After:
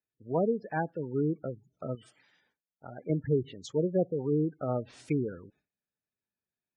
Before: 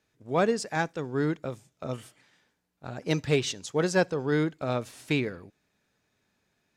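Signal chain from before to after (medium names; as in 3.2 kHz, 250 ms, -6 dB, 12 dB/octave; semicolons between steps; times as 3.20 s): gate with hold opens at -60 dBFS; low-pass that closes with the level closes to 620 Hz, closed at -21 dBFS; spectral gate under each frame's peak -15 dB strong; 1.95–3.10 s: bass shelf 360 Hz -8 dB; trim -1.5 dB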